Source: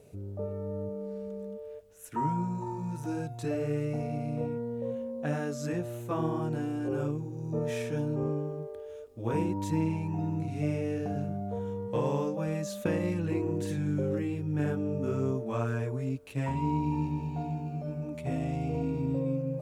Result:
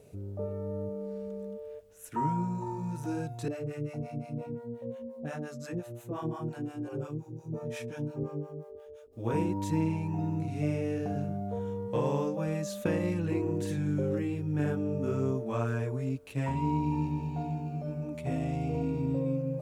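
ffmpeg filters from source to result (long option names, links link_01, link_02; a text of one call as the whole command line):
ffmpeg -i in.wav -filter_complex "[0:a]asettb=1/sr,asplit=3[link_01][link_02][link_03];[link_01]atrim=end=3.484[link_04];[link_02]atrim=start=3.48:end=9.13,asetpts=PTS-STARTPTS,afade=type=in:duration=0.004:curve=qsin,afade=type=out:start_time=5.646:duration=0.004:curve=qsin,acrossover=split=550[link_05][link_06];[link_05]aeval=exprs='val(0)*(1-1/2+1/2*cos(2*PI*5.7*n/s))':channel_layout=same[link_07];[link_06]aeval=exprs='val(0)*(1-1/2-1/2*cos(2*PI*5.7*n/s))':channel_layout=same[link_08];[link_07][link_08]amix=inputs=2:normalize=0[link_09];[link_03]atrim=start=9.126[link_10];[link_04][link_09]acrossfade=duration=0.004:curve1=hsin:curve2=qsin[link_11];[link_11][link_10]acrossfade=duration=0.004:curve1=qsin:curve2=hsin" out.wav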